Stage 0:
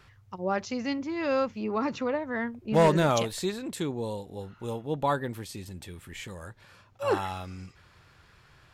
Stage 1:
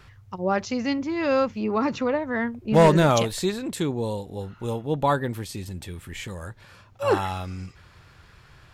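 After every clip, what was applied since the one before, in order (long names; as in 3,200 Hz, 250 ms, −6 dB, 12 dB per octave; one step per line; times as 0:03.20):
low-shelf EQ 120 Hz +5 dB
level +4.5 dB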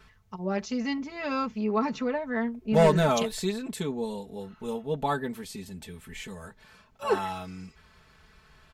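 comb filter 4.6 ms, depth 92%
level −7 dB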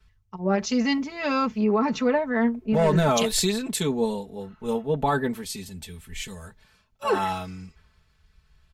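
brickwall limiter −22 dBFS, peak gain reduction 11.5 dB
multiband upward and downward expander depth 70%
level +7.5 dB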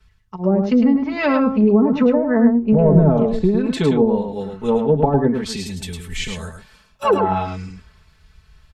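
treble cut that deepens with the level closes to 460 Hz, closed at −18.5 dBFS
single-tap delay 106 ms −6 dB
automatic gain control gain up to 4.5 dB
level +4.5 dB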